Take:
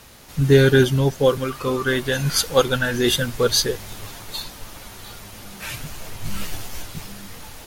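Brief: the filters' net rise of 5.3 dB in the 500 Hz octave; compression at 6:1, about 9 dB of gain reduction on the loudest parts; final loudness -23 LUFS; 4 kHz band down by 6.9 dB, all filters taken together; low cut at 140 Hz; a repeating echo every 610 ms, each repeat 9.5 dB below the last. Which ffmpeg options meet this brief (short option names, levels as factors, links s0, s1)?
-af "highpass=140,equalizer=f=500:t=o:g=6.5,equalizer=f=4000:t=o:g=-8.5,acompressor=threshold=0.178:ratio=6,aecho=1:1:610|1220|1830|2440:0.335|0.111|0.0365|0.012,volume=0.891"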